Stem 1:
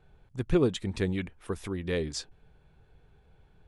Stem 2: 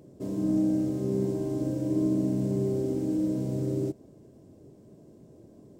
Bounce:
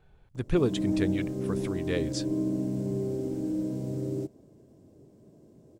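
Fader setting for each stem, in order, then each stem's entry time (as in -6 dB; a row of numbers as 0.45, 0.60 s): -0.5, -3.0 dB; 0.00, 0.35 s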